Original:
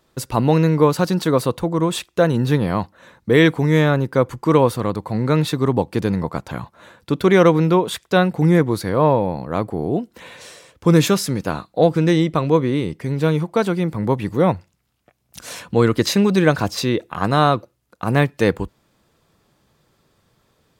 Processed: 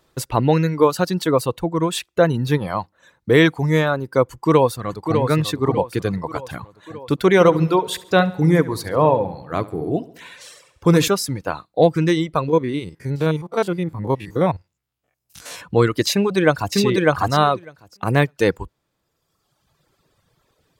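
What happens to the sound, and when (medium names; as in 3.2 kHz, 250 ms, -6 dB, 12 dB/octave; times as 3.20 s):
4.28–5.18 s: echo throw 600 ms, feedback 55%, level -5.5 dB
7.33–11.08 s: feedback delay 70 ms, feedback 54%, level -8.5 dB
12.48–15.62 s: spectrogram pixelated in time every 50 ms
16.12–16.76 s: echo throw 600 ms, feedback 15%, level -0.5 dB
whole clip: reverb removal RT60 1.4 s; peaking EQ 220 Hz -6 dB 0.37 oct; trim +1 dB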